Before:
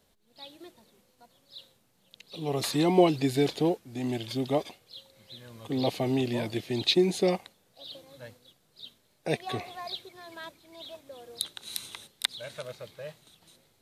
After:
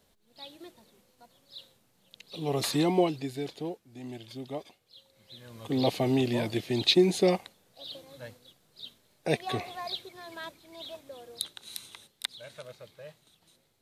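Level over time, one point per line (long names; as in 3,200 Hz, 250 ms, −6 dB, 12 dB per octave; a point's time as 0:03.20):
0:02.75 +0.5 dB
0:03.34 −10 dB
0:04.82 −10 dB
0:05.62 +1.5 dB
0:11.02 +1.5 dB
0:11.85 −5.5 dB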